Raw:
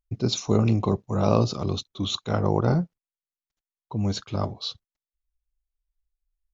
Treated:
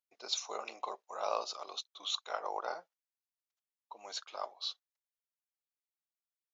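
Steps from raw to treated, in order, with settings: high-pass 650 Hz 24 dB/octave; trim -6.5 dB

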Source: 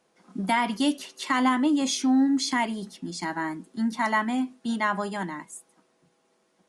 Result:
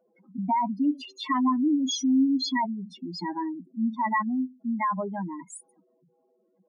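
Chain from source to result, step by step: spectral contrast enhancement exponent 3.6

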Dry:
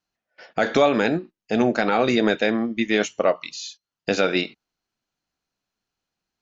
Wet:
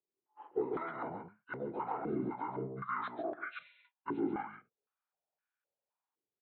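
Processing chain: frequency-domain pitch shifter -9.5 st; peak limiter -19 dBFS, peak gain reduction 9.5 dB; delay 138 ms -5 dB; step-sequenced band-pass 3.9 Hz 360–1500 Hz

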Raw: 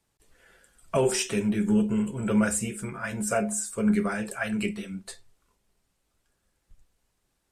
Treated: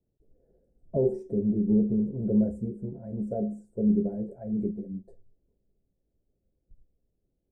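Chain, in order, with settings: inverse Chebyshev low-pass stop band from 1.1 kHz, stop band 40 dB

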